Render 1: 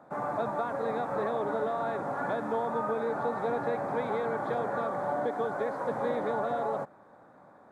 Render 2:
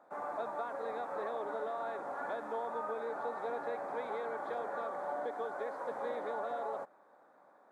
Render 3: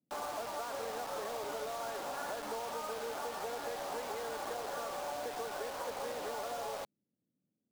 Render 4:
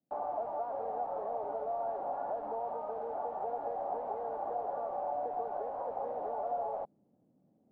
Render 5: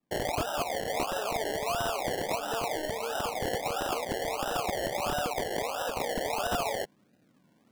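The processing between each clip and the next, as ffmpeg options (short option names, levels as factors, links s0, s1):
-af "highpass=370,volume=0.473"
-filter_complex "[0:a]acompressor=threshold=0.01:ratio=10,acrossover=split=190[s0][s1];[s1]acrusher=bits=7:mix=0:aa=0.000001[s2];[s0][s2]amix=inputs=2:normalize=0,volume=1.5"
-af "areverse,acompressor=mode=upward:threshold=0.00282:ratio=2.5,areverse,lowpass=f=750:t=q:w=3.7,volume=0.668"
-filter_complex "[0:a]aeval=exprs='(mod(26.6*val(0)+1,2)-1)/26.6':c=same,acrossover=split=110[s0][s1];[s1]acrusher=samples=28:mix=1:aa=0.000001:lfo=1:lforange=16.8:lforate=1.5[s2];[s0][s2]amix=inputs=2:normalize=0,volume=1.78"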